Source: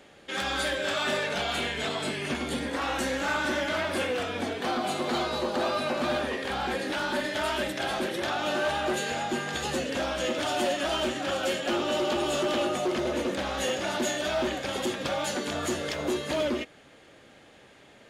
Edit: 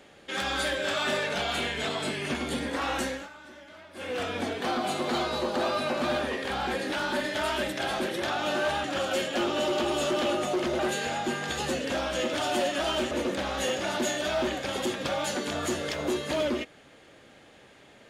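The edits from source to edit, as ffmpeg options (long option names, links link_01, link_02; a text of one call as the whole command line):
ffmpeg -i in.wav -filter_complex "[0:a]asplit=6[link_01][link_02][link_03][link_04][link_05][link_06];[link_01]atrim=end=3.29,asetpts=PTS-STARTPTS,afade=type=out:start_time=3:duration=0.29:silence=0.1[link_07];[link_02]atrim=start=3.29:end=3.94,asetpts=PTS-STARTPTS,volume=-20dB[link_08];[link_03]atrim=start=3.94:end=8.842,asetpts=PTS-STARTPTS,afade=type=in:duration=0.29:silence=0.1[link_09];[link_04]atrim=start=11.158:end=13.112[link_10];[link_05]atrim=start=8.838:end=11.162[link_11];[link_06]atrim=start=13.108[link_12];[link_07][link_08][link_09]concat=n=3:v=0:a=1[link_13];[link_13][link_10]acrossfade=duration=0.004:curve1=hsin:curve2=hsin[link_14];[link_14][link_11]acrossfade=duration=0.004:curve1=hsin:curve2=hsin[link_15];[link_15][link_12]acrossfade=duration=0.004:curve1=hsin:curve2=hsin" out.wav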